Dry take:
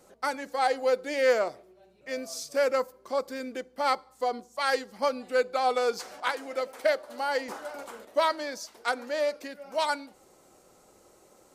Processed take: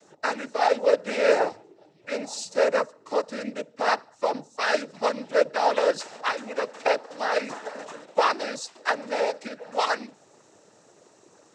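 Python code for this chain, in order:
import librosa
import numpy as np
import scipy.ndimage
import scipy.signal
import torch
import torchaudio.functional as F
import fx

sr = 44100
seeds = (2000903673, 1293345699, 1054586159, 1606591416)

y = fx.noise_vocoder(x, sr, seeds[0], bands=12)
y = y * 10.0 ** (3.5 / 20.0)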